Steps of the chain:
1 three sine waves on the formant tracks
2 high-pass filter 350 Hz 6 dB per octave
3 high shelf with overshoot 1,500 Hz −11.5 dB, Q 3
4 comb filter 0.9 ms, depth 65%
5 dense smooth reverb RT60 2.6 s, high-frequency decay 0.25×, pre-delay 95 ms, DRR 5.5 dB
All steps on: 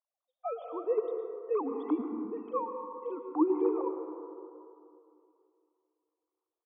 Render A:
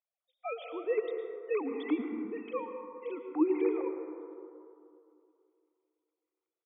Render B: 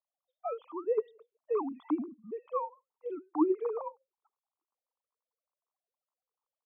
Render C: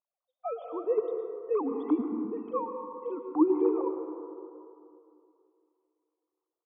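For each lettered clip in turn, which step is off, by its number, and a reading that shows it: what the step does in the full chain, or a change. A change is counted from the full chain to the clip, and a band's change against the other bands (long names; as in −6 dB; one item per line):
3, change in integrated loudness −1.0 LU
5, change in crest factor +2.0 dB
2, change in momentary loudness spread +1 LU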